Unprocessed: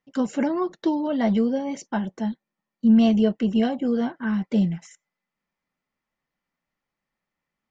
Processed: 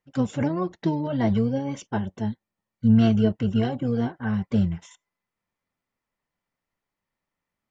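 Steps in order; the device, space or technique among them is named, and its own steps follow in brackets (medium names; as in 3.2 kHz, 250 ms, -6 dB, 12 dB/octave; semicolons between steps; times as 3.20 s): octave pedal (harmony voices -12 st -4 dB); trim -2.5 dB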